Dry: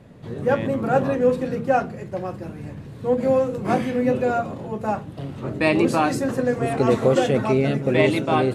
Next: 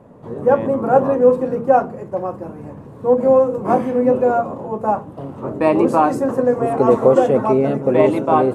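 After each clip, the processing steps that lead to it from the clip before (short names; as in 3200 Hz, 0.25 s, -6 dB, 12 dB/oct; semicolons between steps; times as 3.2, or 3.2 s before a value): graphic EQ 250/500/1000/2000/4000 Hz +5/+7/+12/-4/-8 dB; gain -3.5 dB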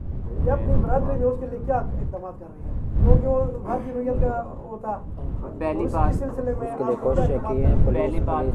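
wind noise 89 Hz -13 dBFS; gain -10.5 dB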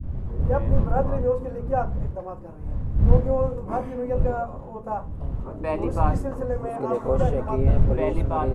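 bands offset in time lows, highs 30 ms, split 320 Hz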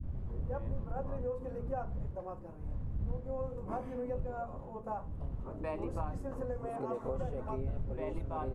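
compressor 4:1, threshold -26 dBFS, peak gain reduction 15.5 dB; gain -8 dB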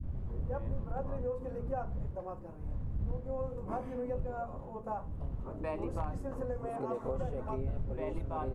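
overloaded stage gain 26.5 dB; gain +1 dB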